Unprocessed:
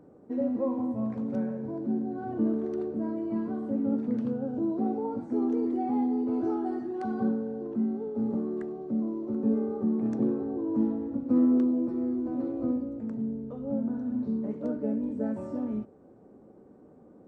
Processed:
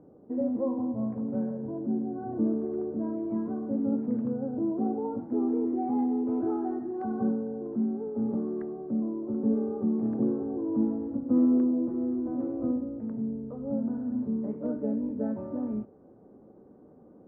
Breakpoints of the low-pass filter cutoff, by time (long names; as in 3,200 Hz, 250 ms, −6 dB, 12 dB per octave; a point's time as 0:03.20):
1,000 Hz
from 0:02.89 1,200 Hz
from 0:05.99 1,500 Hz
from 0:06.74 1,200 Hz
from 0:07.99 1,500 Hz
from 0:08.99 1,200 Hz
from 0:12.12 1,400 Hz